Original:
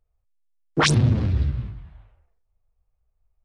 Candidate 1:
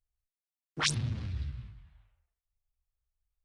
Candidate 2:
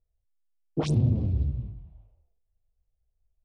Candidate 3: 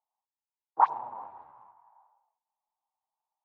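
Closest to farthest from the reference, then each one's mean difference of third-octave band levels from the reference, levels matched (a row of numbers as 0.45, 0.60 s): 1, 2, 3; 3.5, 4.5, 13.5 dB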